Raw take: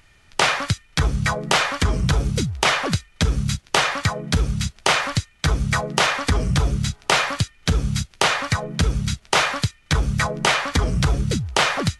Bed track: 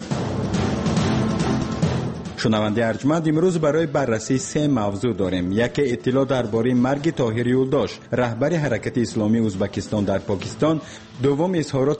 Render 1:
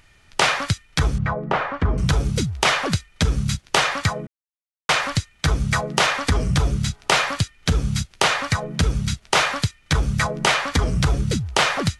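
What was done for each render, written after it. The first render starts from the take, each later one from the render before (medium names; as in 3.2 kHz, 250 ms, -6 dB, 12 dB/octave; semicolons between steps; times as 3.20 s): 1.18–1.98 s: low-pass 1.4 kHz; 4.27–4.89 s: mute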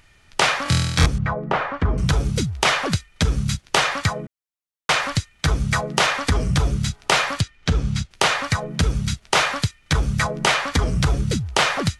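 0.63–1.06 s: flutter echo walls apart 4.1 m, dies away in 1.2 s; 7.41–8.11 s: distance through air 63 m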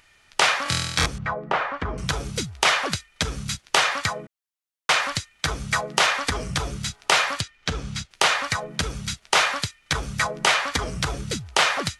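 bass shelf 320 Hz -12 dB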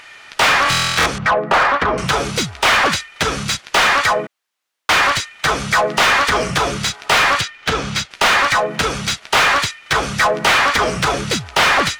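overdrive pedal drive 27 dB, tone 2.7 kHz, clips at -4.5 dBFS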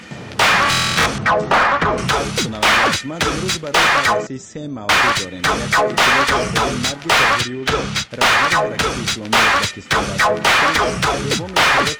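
add bed track -8.5 dB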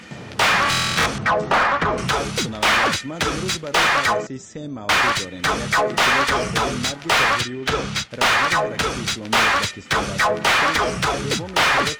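trim -3.5 dB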